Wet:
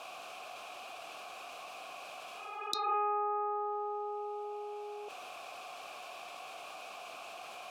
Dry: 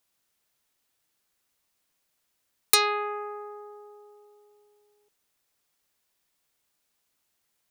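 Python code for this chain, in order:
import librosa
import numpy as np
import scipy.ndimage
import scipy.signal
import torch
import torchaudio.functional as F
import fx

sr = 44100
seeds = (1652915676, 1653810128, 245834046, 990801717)

y = fx.vowel_filter(x, sr, vowel='a')
y = fx.env_lowpass_down(y, sr, base_hz=1500.0, full_db=-43.5)
y = fx.spec_repair(y, sr, seeds[0], start_s=2.33, length_s=0.58, low_hz=360.0, high_hz=3500.0, source='both')
y = fx.env_flatten(y, sr, amount_pct=70)
y = y * 10.0 ** (10.0 / 20.0)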